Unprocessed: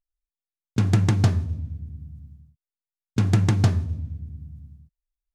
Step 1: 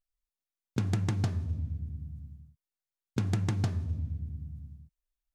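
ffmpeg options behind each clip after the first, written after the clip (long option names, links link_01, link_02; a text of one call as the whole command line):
ffmpeg -i in.wav -af "acompressor=threshold=-26dB:ratio=4,volume=-1.5dB" out.wav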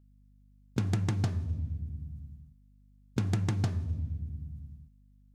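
ffmpeg -i in.wav -af "aeval=exprs='val(0)+0.00112*(sin(2*PI*50*n/s)+sin(2*PI*2*50*n/s)/2+sin(2*PI*3*50*n/s)/3+sin(2*PI*4*50*n/s)/4+sin(2*PI*5*50*n/s)/5)':channel_layout=same" out.wav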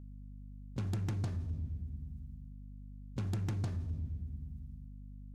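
ffmpeg -i in.wav -af "aeval=exprs='val(0)+0.00562*(sin(2*PI*50*n/s)+sin(2*PI*2*50*n/s)/2+sin(2*PI*3*50*n/s)/3+sin(2*PI*4*50*n/s)/4+sin(2*PI*5*50*n/s)/5)':channel_layout=same,asoftclip=type=tanh:threshold=-26dB,volume=-3.5dB" out.wav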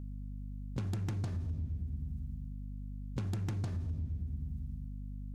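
ffmpeg -i in.wav -af "acompressor=threshold=-40dB:ratio=6,volume=6.5dB" out.wav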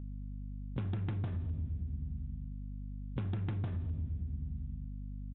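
ffmpeg -i in.wav -af "aresample=8000,aresample=44100" out.wav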